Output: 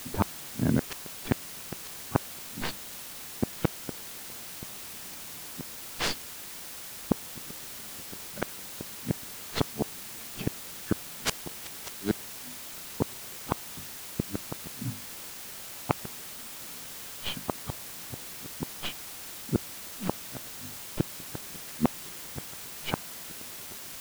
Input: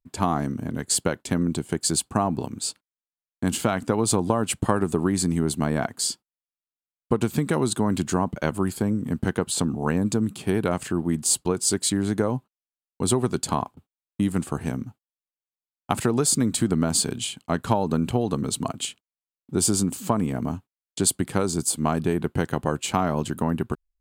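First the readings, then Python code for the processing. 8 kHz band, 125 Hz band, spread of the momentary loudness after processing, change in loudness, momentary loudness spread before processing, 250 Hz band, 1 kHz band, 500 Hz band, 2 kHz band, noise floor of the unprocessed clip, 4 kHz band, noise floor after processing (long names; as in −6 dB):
−12.0 dB, −10.0 dB, 8 LU, −10.5 dB, 8 LU, −11.0 dB, −11.0 dB, −12.5 dB, −5.5 dB, below −85 dBFS, −6.5 dB, −42 dBFS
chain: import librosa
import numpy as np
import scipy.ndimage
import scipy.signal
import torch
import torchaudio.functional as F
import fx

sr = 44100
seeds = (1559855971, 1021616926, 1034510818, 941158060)

p1 = fx.tracing_dist(x, sr, depth_ms=0.48)
p2 = fx.hum_notches(p1, sr, base_hz=50, count=6)
p3 = fx.env_lowpass(p2, sr, base_hz=810.0, full_db=-19.0)
p4 = fx.gate_flip(p3, sr, shuts_db=-17.0, range_db=-42)
p5 = fx.quant_dither(p4, sr, seeds[0], bits=6, dither='triangular')
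p6 = p4 + (p5 * 10.0 ** (-6.0 / 20.0))
y = fx.peak_eq(p6, sr, hz=170.0, db=3.0, octaves=2.1)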